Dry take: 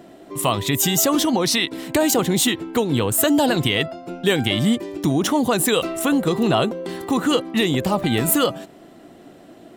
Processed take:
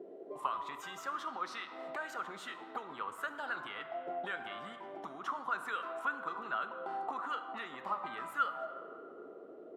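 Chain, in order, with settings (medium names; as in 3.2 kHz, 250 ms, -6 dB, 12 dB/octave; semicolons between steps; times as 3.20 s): high-pass 93 Hz; bass shelf 200 Hz -5.5 dB; compression 2.5:1, threshold -30 dBFS, peak gain reduction 10.5 dB; auto-wah 380–1400 Hz, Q 7.8, up, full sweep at -24.5 dBFS; on a send: reverberation RT60 2.6 s, pre-delay 5 ms, DRR 7 dB; on the sum: trim +6.5 dB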